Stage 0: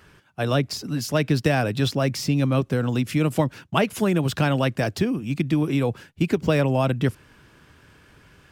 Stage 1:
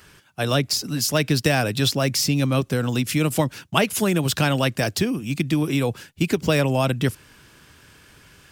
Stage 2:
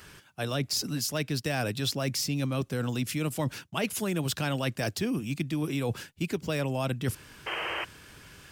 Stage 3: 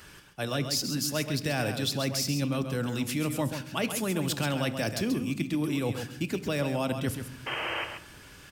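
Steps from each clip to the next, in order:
high shelf 3200 Hz +11.5 dB
reverse; compressor 6:1, threshold -27 dBFS, peak gain reduction 13.5 dB; reverse; painted sound noise, 7.46–7.85, 320–3200 Hz -33 dBFS
echo 0.134 s -8 dB; on a send at -12 dB: reverb RT60 1.1 s, pre-delay 3 ms

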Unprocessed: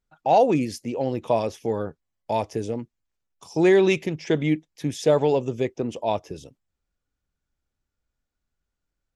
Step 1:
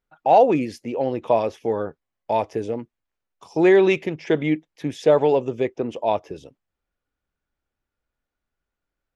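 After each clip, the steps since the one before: tone controls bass -7 dB, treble -12 dB; gain +3.5 dB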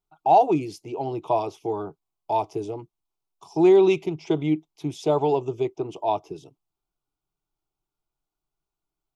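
fixed phaser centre 350 Hz, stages 8

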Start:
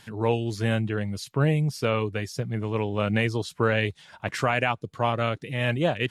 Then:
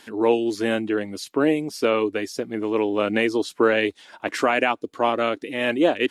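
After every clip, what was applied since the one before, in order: resonant low shelf 200 Hz -13 dB, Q 3; gain +3 dB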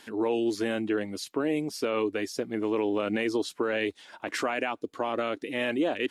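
limiter -15.5 dBFS, peak gain reduction 9.5 dB; gain -3 dB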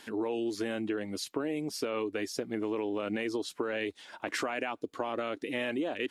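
compressor, threshold -29 dBFS, peak gain reduction 7 dB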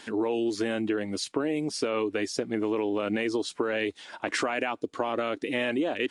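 gain +5 dB; AAC 96 kbps 22050 Hz

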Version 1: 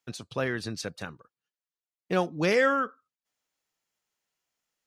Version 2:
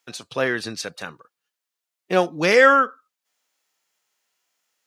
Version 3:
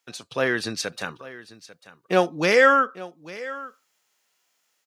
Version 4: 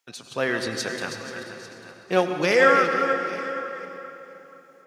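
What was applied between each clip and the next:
HPF 560 Hz 6 dB/oct; harmonic-percussive split harmonic +6 dB; gain +6.5 dB
AGC gain up to 6.5 dB; echo 0.845 s -17.5 dB; gain -3 dB
regenerating reverse delay 0.241 s, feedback 46%, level -8.5 dB; reverb RT60 3.7 s, pre-delay 81 ms, DRR 6 dB; gain -2 dB

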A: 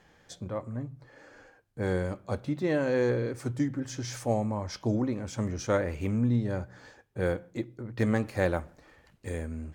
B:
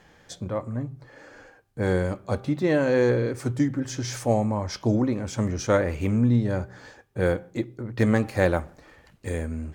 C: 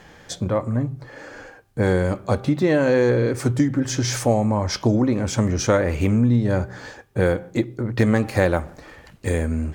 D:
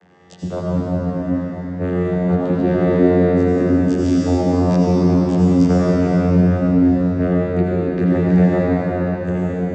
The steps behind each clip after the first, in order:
de-hum 394 Hz, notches 3; gain +5.5 dB
compressor 2.5:1, threshold -25 dBFS, peak gain reduction 7 dB; gain +8.5 dB
vocoder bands 16, saw 89.6 Hz; reverb RT60 5.6 s, pre-delay 75 ms, DRR -7 dB; gain -1 dB

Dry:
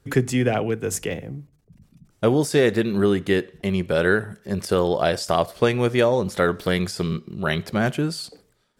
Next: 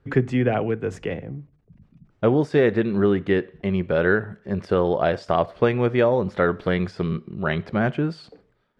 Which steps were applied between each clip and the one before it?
LPF 2300 Hz 12 dB/oct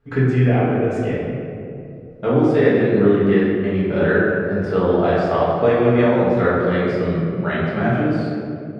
reverb RT60 2.5 s, pre-delay 4 ms, DRR -9 dB; gain -6 dB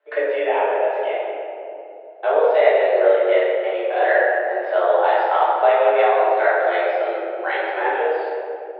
mistuned SSB +170 Hz 270–3600 Hz; gain +1 dB

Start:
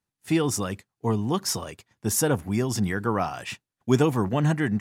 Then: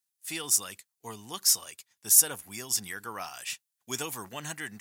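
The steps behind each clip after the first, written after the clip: pre-emphasis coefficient 0.97; gain +6 dB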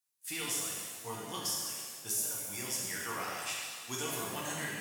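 compressor 6:1, threshold -32 dBFS, peak gain reduction 17.5 dB; shimmer reverb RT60 1.7 s, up +7 st, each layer -8 dB, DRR -4.5 dB; gain -4.5 dB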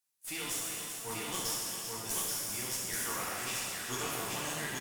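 one-sided clip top -42.5 dBFS; tapped delay 0.39/0.832 s -8.5/-3 dB; gain +1.5 dB

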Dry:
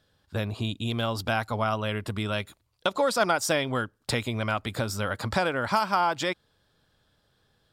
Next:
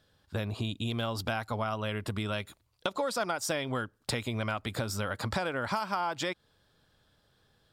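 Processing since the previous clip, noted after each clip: compressor 3:1, threshold -30 dBFS, peak gain reduction 9 dB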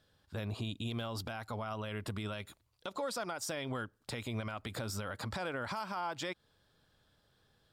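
limiter -26 dBFS, peak gain reduction 10 dB; gain -3 dB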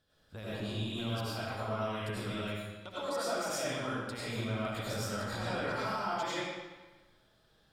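reverb RT60 1.3 s, pre-delay 55 ms, DRR -9.5 dB; gain -6 dB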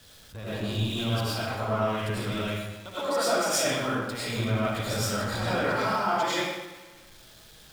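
zero-crossing step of -44.5 dBFS; three-band expander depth 70%; gain +7 dB

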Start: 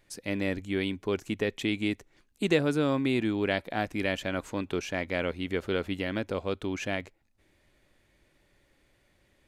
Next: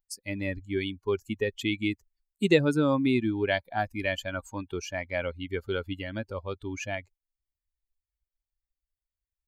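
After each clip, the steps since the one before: per-bin expansion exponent 2; gain +5.5 dB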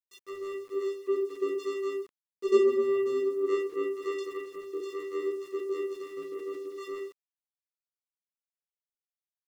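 vocoder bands 4, square 393 Hz; shoebox room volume 280 m³, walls furnished, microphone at 2.1 m; sample gate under -51 dBFS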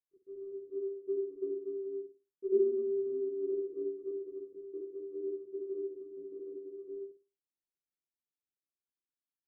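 in parallel at -3 dB: sample-and-hold 28×; on the sum: ladder low-pass 420 Hz, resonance 50%; flutter echo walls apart 9.5 m, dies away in 0.32 s; gain -6 dB

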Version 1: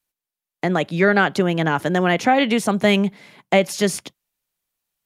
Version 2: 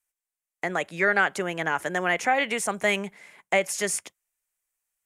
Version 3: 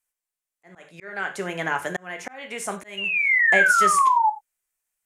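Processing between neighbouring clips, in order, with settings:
graphic EQ 125/250/2000/4000/8000 Hz -11/-8/+6/-8/+10 dB; gain -6 dB
painted sound fall, 2.97–4.3, 840–2900 Hz -19 dBFS; non-linear reverb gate 0.12 s falling, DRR 5.5 dB; auto swell 0.559 s

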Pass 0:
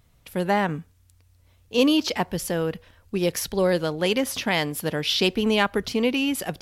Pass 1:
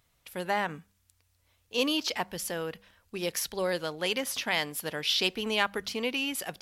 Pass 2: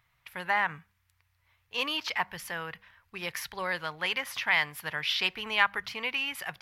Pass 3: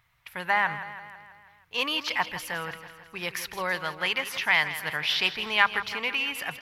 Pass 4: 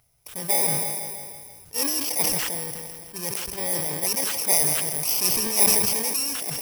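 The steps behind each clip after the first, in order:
low shelf 490 Hz -11.5 dB; de-hum 98.95 Hz, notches 2; gain -3 dB
graphic EQ 125/250/500/1000/2000/8000 Hz +8/-9/-5/+8/+10/-7 dB; gain -4.5 dB
feedback echo 0.163 s, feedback 58%, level -12.5 dB; gain +3 dB
FFT order left unsorted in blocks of 32 samples; sustainer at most 27 dB/s; gain +2 dB

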